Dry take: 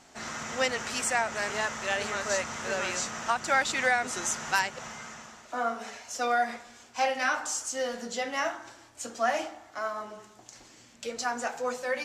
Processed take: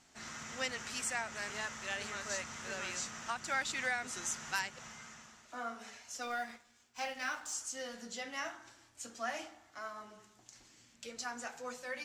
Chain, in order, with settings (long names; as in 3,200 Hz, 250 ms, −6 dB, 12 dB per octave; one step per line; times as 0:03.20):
0:06.22–0:07.53: mu-law and A-law mismatch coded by A
parametric band 600 Hz −7 dB 2 octaves
level −7 dB